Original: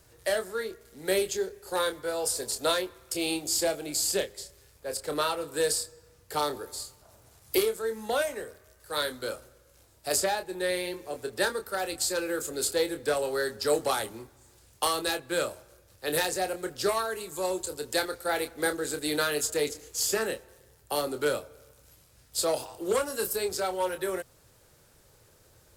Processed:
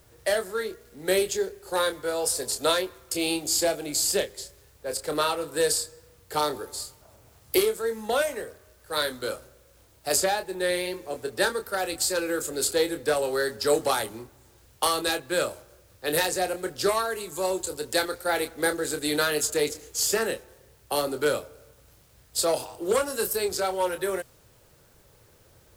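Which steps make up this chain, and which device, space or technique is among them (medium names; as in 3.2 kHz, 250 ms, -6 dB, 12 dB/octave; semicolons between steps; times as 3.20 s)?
plain cassette with noise reduction switched in (tape noise reduction on one side only decoder only; wow and flutter 28 cents; white noise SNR 35 dB); trim +3 dB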